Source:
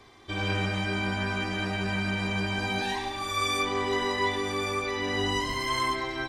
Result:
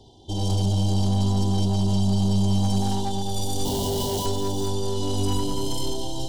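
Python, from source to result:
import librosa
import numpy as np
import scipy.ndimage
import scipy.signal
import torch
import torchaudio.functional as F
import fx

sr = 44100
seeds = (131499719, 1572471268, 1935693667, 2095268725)

y = fx.tracing_dist(x, sr, depth_ms=0.3)
y = scipy.signal.sosfilt(scipy.signal.butter(2, 8700.0, 'lowpass', fs=sr, output='sos'), y)
y = fx.echo_feedback(y, sr, ms=214, feedback_pct=51, wet_db=-10.0)
y = fx.schmitt(y, sr, flips_db=-39.0, at=(3.65, 4.26))
y = fx.brickwall_bandstop(y, sr, low_hz=1000.0, high_hz=2800.0)
y = y + 10.0 ** (-13.0 / 20.0) * np.pad(y, (int(418 * sr / 1000.0), 0))[:len(y)]
y = 10.0 ** (-21.5 / 20.0) * np.tanh(y / 10.0 ** (-21.5 / 20.0))
y = fx.bass_treble(y, sr, bass_db=7, treble_db=1)
y = y * librosa.db_to_amplitude(2.0)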